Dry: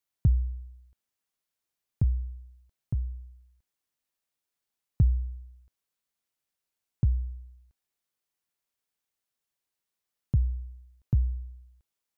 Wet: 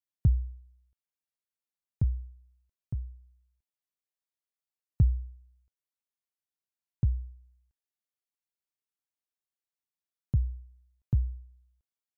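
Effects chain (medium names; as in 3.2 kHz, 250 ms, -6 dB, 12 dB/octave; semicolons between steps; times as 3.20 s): upward expansion 1.5:1, over -41 dBFS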